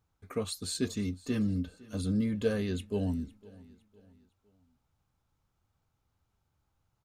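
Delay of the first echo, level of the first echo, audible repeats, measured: 508 ms, -22.0 dB, 2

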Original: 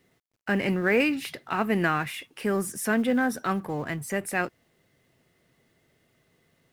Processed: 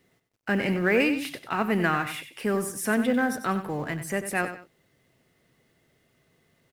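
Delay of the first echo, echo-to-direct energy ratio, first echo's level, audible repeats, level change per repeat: 94 ms, -10.0 dB, -10.5 dB, 2, -10.0 dB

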